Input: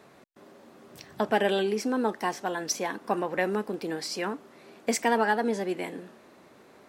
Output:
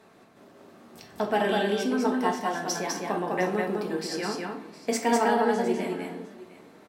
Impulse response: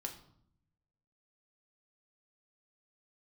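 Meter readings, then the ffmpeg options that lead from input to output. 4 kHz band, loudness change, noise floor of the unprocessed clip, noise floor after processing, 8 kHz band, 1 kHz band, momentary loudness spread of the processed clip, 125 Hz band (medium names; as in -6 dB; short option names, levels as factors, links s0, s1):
+0.5 dB, +1.5 dB, -55 dBFS, -55 dBFS, 0.0 dB, +2.0 dB, 12 LU, +3.0 dB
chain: -filter_complex "[0:a]aecho=1:1:202|708:0.708|0.133[s0];[1:a]atrim=start_sample=2205,asetrate=38367,aresample=44100[s1];[s0][s1]afir=irnorm=-1:irlink=0"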